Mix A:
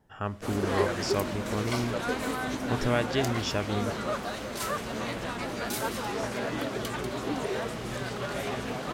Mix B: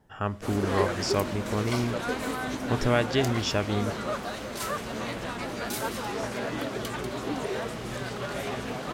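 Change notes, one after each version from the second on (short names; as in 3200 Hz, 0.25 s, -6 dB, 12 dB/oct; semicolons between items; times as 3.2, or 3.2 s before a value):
speech +3.0 dB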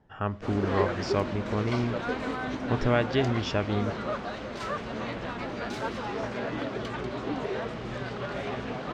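master: add air absorption 160 m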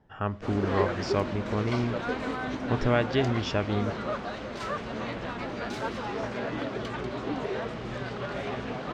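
none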